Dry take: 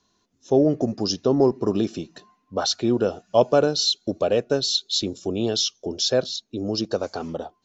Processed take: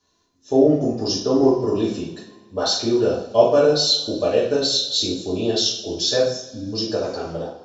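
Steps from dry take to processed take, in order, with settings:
time-frequency box erased 0:06.20–0:06.73, 320–5,000 Hz
coupled-rooms reverb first 0.54 s, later 2 s, from −19 dB, DRR −7.5 dB
level −5.5 dB

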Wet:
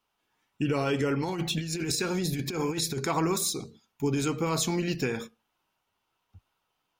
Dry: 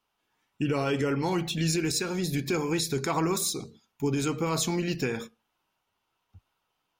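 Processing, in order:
0:01.24–0:03.00: compressor whose output falls as the input rises −29 dBFS, ratio −0.5

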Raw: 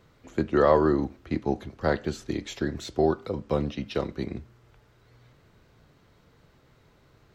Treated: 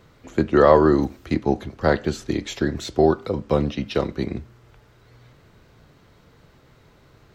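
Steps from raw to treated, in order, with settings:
0:00.92–0:01.34: high-shelf EQ 4,900 Hz +11 dB
level +6 dB

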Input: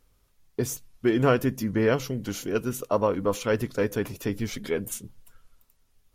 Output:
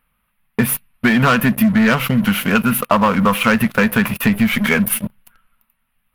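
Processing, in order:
drawn EQ curve 110 Hz 0 dB, 220 Hz +14 dB, 330 Hz −12 dB, 510 Hz +1 dB, 1,100 Hz +13 dB, 2,700 Hz +14 dB, 7,000 Hz −22 dB, 10,000 Hz +9 dB
leveller curve on the samples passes 3
downward compressor, threshold −11 dBFS, peak gain reduction 7.5 dB

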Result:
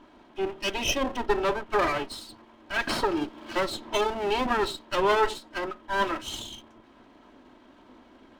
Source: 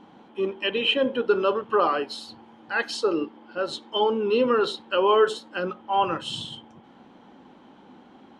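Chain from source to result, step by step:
lower of the sound and its delayed copy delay 3.1 ms
0:02.87–0:04.46: multiband upward and downward compressor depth 100%
level −1.5 dB

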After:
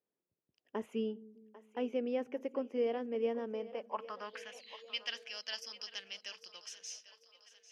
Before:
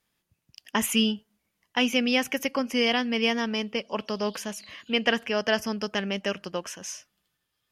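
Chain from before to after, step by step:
band-pass filter sweep 430 Hz → 4,500 Hz, 0:03.50–0:04.86
echo with a time of its own for lows and highs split 380 Hz, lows 200 ms, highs 796 ms, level −16 dB
level −3.5 dB

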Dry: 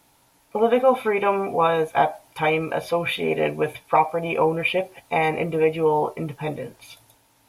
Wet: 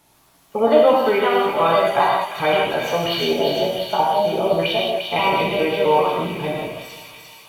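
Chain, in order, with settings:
pitch shifter gated in a rhythm +3.5 semitones, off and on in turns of 133 ms
gain on a spectral selection 0:03.26–0:04.59, 960–2,900 Hz −12 dB
on a send: delay with a high-pass on its return 349 ms, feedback 64%, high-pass 2,800 Hz, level −3 dB
on the sum: reverb whose tail is shaped and stops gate 210 ms flat, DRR −2.5 dB
feedback echo with a swinging delay time 247 ms, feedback 46%, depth 60 cents, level −17.5 dB

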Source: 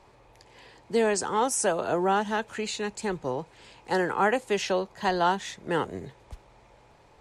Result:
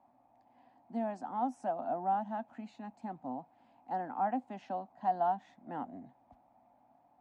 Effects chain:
pair of resonant band-passes 430 Hz, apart 1.5 octaves

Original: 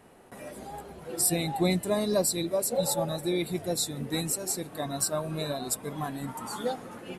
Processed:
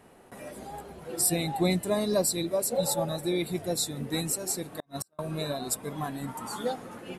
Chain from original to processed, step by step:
0:04.65–0:05.19: gate with flip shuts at −21 dBFS, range −40 dB

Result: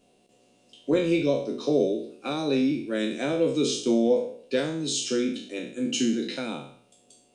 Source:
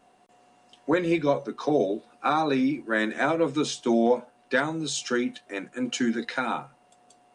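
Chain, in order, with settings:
peak hold with a decay on every bin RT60 0.58 s
flat-topped bell 1,200 Hz −14 dB

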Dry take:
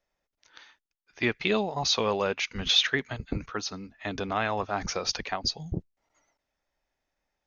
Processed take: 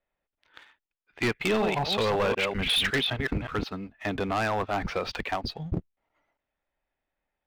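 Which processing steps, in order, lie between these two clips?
0:01.41–0:03.65: delay that plays each chunk backwards 188 ms, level −6 dB
low-pass filter 3,400 Hz 24 dB per octave
leveller curve on the samples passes 1
hard clipping −21 dBFS, distortion −12 dB

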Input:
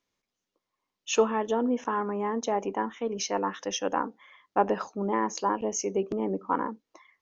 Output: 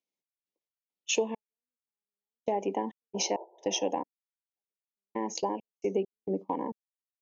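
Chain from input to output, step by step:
downward compressor 5 to 1, threshold −30 dBFS, peak gain reduction 12.5 dB
elliptic high-pass filter 150 Hz
gate pattern "x.x.xx.....x" 67 BPM −60 dB
sound drawn into the spectrogram noise, 0:03.14–0:03.91, 330–1,000 Hz −47 dBFS
noise gate −40 dBFS, range −17 dB
Chebyshev band-stop filter 850–2,200 Hz, order 2
level +5.5 dB

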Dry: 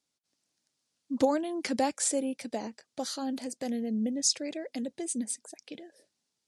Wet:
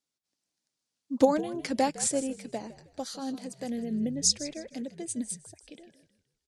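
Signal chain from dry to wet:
echo with shifted repeats 157 ms, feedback 36%, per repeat −67 Hz, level −12.5 dB
expander for the loud parts 1.5 to 1, over −39 dBFS
level +4.5 dB

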